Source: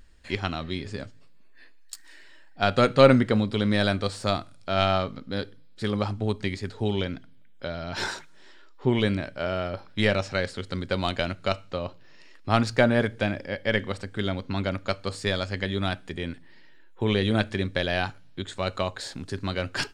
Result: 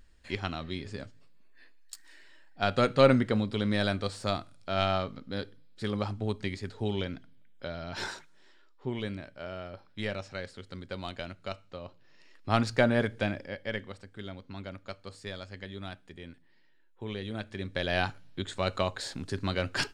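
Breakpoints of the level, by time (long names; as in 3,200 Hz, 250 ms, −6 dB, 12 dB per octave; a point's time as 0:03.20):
0:07.84 −5 dB
0:08.90 −11.5 dB
0:11.80 −11.5 dB
0:12.54 −4 dB
0:13.28 −4 dB
0:13.99 −13.5 dB
0:17.41 −13.5 dB
0:17.99 −1.5 dB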